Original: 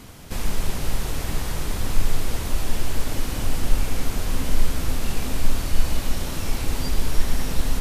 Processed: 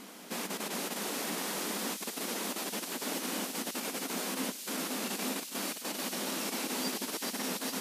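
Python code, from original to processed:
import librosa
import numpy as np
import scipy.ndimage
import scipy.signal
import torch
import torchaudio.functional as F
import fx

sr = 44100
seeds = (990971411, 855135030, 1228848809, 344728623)

y = fx.over_compress(x, sr, threshold_db=-17.0, ratio=-0.5)
y = fx.brickwall_highpass(y, sr, low_hz=180.0)
y = fx.echo_wet_highpass(y, sr, ms=417, feedback_pct=69, hz=3900.0, wet_db=-4.0)
y = y * librosa.db_to_amplitude(-5.0)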